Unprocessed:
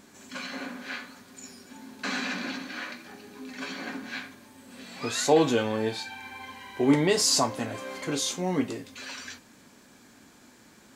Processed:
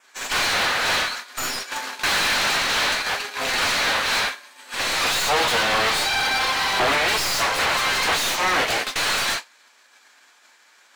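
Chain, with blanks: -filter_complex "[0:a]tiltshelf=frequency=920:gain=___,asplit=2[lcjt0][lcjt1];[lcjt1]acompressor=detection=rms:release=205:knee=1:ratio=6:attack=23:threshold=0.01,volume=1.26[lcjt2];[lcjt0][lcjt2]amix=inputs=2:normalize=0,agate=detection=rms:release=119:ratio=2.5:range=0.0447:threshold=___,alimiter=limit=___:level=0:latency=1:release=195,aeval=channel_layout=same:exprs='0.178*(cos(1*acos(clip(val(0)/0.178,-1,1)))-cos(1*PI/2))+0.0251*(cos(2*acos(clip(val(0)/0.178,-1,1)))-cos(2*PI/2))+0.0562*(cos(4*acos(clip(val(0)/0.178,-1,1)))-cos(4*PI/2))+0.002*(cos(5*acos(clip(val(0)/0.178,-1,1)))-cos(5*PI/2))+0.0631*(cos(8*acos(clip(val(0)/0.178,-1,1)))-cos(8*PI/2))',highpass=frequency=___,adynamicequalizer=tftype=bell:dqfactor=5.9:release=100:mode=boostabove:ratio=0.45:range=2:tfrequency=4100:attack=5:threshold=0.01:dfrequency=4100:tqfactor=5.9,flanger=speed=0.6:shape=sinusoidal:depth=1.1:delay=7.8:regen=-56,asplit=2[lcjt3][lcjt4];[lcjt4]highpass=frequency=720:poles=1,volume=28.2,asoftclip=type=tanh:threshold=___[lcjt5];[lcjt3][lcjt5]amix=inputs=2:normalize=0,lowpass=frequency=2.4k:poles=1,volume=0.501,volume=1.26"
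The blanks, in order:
-6, 0.0178, 0.178, 530, 0.224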